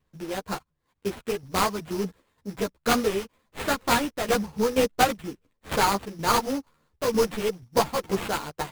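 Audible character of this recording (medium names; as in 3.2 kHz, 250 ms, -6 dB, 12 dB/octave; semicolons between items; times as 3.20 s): a buzz of ramps at a fixed pitch in blocks of 8 samples; tremolo saw down 2.1 Hz, depth 70%; aliases and images of a low sample rate 5.6 kHz, jitter 20%; a shimmering, thickened sound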